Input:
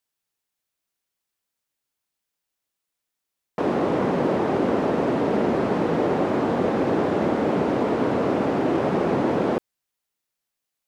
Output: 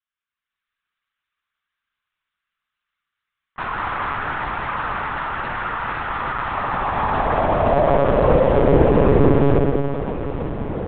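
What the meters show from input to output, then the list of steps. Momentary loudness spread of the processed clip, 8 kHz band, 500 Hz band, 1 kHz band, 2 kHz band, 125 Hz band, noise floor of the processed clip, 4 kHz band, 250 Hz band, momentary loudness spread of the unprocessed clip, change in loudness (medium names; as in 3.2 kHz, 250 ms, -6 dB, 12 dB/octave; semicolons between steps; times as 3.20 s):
11 LU, no reading, +3.5 dB, +6.0 dB, +7.5 dB, +8.5 dB, under -85 dBFS, +2.5 dB, -0.5 dB, 1 LU, +3.0 dB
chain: level rider gain up to 9 dB; echo that smears into a reverb 1251 ms, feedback 63%, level -11.5 dB; high-pass sweep 1.3 kHz -> 180 Hz, 6.36–10.11 s; spring tank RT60 2.1 s, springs 54 ms, chirp 60 ms, DRR 0.5 dB; monotone LPC vocoder at 8 kHz 140 Hz; trim -6.5 dB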